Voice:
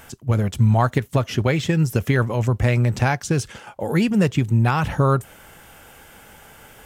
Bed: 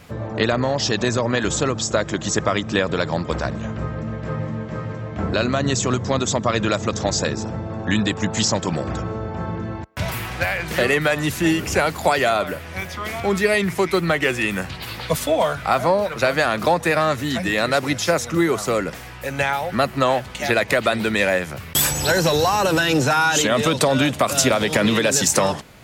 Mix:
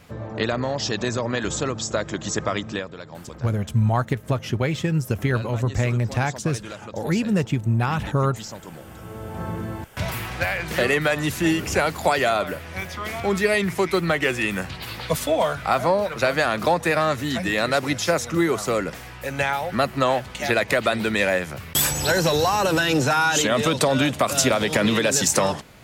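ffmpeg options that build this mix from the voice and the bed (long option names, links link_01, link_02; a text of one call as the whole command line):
ffmpeg -i stem1.wav -i stem2.wav -filter_complex "[0:a]adelay=3150,volume=-3.5dB[link_01];[1:a]volume=10dB,afade=type=out:start_time=2.63:duration=0.28:silence=0.251189,afade=type=in:start_time=8.97:duration=0.55:silence=0.188365[link_02];[link_01][link_02]amix=inputs=2:normalize=0" out.wav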